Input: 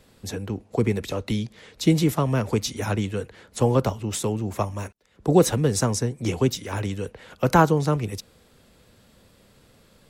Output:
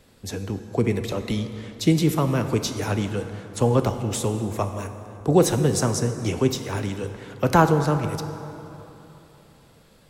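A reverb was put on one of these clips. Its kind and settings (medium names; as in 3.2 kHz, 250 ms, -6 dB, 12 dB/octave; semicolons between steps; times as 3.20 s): plate-style reverb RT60 3.2 s, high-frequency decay 0.55×, DRR 8 dB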